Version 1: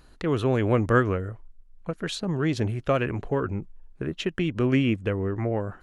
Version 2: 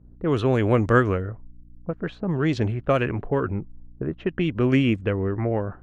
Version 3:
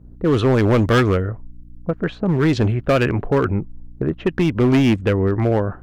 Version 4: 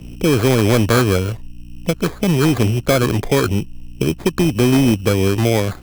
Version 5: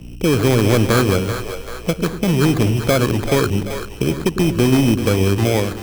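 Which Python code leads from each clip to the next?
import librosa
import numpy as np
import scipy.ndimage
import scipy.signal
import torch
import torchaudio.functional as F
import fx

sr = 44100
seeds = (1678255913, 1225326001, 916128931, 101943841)

y1 = fx.env_lowpass(x, sr, base_hz=310.0, full_db=-18.5)
y1 = fx.add_hum(y1, sr, base_hz=60, snr_db=27)
y1 = F.gain(torch.from_numpy(y1), 2.5).numpy()
y2 = np.clip(y1, -10.0 ** (-18.0 / 20.0), 10.0 ** (-18.0 / 20.0))
y2 = F.gain(torch.from_numpy(y2), 7.0).numpy()
y3 = fx.sample_hold(y2, sr, seeds[0], rate_hz=2800.0, jitter_pct=0)
y3 = fx.band_squash(y3, sr, depth_pct=40)
y3 = F.gain(torch.from_numpy(y3), 1.5).numpy()
y4 = fx.echo_split(y3, sr, split_hz=420.0, low_ms=101, high_ms=387, feedback_pct=52, wet_db=-9)
y4 = F.gain(torch.from_numpy(y4), -1.0).numpy()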